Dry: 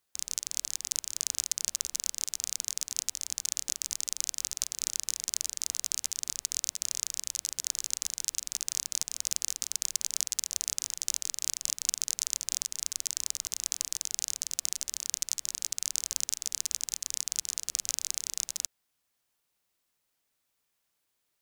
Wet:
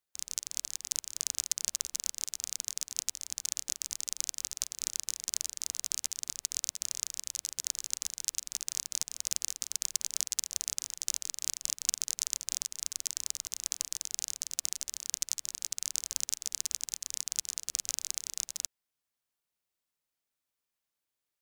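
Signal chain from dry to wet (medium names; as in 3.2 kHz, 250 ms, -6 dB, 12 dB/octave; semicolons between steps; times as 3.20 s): upward expansion 1.5:1, over -46 dBFS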